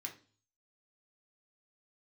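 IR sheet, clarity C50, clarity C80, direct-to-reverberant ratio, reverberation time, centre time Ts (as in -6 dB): 12.0 dB, 17.5 dB, 0.5 dB, 0.40 s, 14 ms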